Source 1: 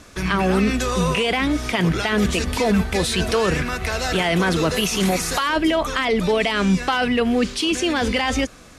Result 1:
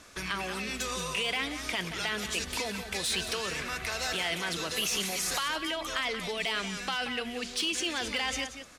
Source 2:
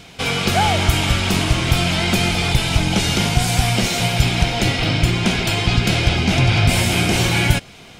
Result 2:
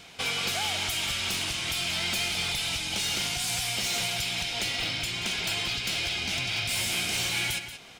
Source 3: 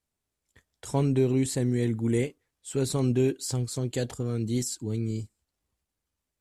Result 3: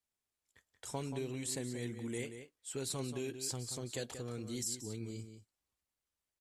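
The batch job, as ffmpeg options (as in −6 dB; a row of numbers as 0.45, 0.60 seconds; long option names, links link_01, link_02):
-filter_complex "[0:a]acrossover=split=2300[link_01][link_02];[link_01]acompressor=threshold=-25dB:ratio=6[link_03];[link_02]asoftclip=type=hard:threshold=-20.5dB[link_04];[link_03][link_04]amix=inputs=2:normalize=0,lowshelf=frequency=430:gain=-9.5,asplit=2[link_05][link_06];[link_06]adelay=180.8,volume=-9dB,highshelf=frequency=4000:gain=-4.07[link_07];[link_05][link_07]amix=inputs=2:normalize=0,volume=-5dB"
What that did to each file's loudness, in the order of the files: −11.0, −10.0, −12.5 LU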